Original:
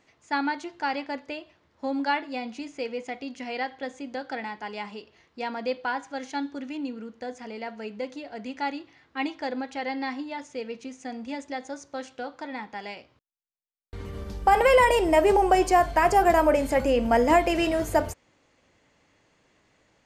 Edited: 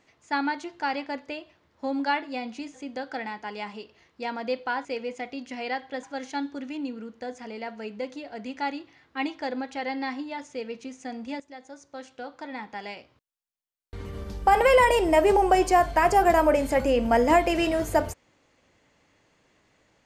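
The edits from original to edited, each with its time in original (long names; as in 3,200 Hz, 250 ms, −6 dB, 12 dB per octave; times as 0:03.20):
0:02.74–0:03.92: move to 0:06.03
0:11.40–0:12.75: fade in, from −13 dB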